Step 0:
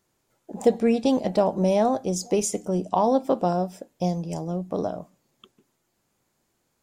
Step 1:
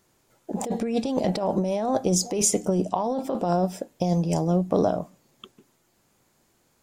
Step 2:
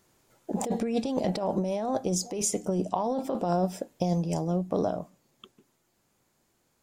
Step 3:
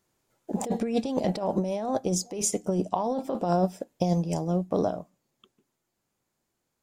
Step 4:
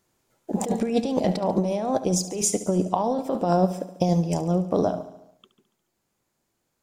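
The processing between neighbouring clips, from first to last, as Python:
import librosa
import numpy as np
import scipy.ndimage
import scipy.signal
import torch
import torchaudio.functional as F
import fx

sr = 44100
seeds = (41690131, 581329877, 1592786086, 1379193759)

y1 = fx.over_compress(x, sr, threshold_db=-26.0, ratio=-1.0)
y1 = y1 * 10.0 ** (3.0 / 20.0)
y2 = fx.rider(y1, sr, range_db=10, speed_s=0.5)
y2 = y2 * 10.0 ** (-4.0 / 20.0)
y3 = fx.upward_expand(y2, sr, threshold_db=-46.0, expansion=1.5)
y3 = y3 * 10.0 ** (3.0 / 20.0)
y4 = fx.echo_feedback(y3, sr, ms=71, feedback_pct=60, wet_db=-14)
y4 = y4 * 10.0 ** (3.5 / 20.0)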